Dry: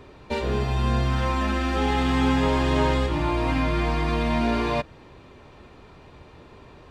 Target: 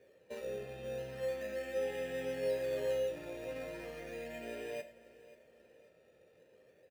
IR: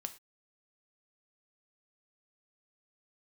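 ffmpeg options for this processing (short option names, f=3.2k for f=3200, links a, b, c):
-filter_complex "[0:a]asplit=3[a][b][c];[a]bandpass=f=530:t=q:w=8,volume=0dB[d];[b]bandpass=f=1.84k:t=q:w=8,volume=-6dB[e];[c]bandpass=f=2.48k:t=q:w=8,volume=-9dB[f];[d][e][f]amix=inputs=3:normalize=0,bass=f=250:g=5,treble=f=4k:g=5,asplit=2[g][h];[h]acrusher=samples=11:mix=1:aa=0.000001:lfo=1:lforange=6.6:lforate=0.37,volume=-4.5dB[i];[g][i]amix=inputs=2:normalize=0,aecho=1:1:536|1072|1608:0.126|0.0504|0.0201[j];[1:a]atrim=start_sample=2205[k];[j][k]afir=irnorm=-1:irlink=0,volume=-6.5dB"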